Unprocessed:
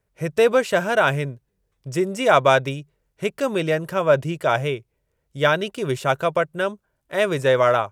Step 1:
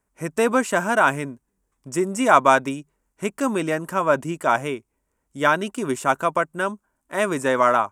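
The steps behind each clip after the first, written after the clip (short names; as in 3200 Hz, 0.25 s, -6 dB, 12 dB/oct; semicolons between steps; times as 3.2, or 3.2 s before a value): graphic EQ 125/250/500/1000/4000/8000 Hz -11/+11/-7/+8/-8/+10 dB; gain -1.5 dB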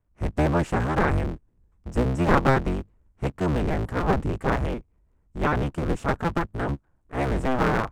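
cycle switcher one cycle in 3, inverted; transient shaper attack +1 dB, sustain +5 dB; RIAA curve playback; gain -7.5 dB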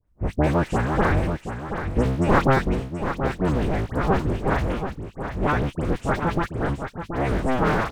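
dispersion highs, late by 71 ms, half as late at 1900 Hz; on a send: echo 0.729 s -8.5 dB; on the sum: gain +1.5 dB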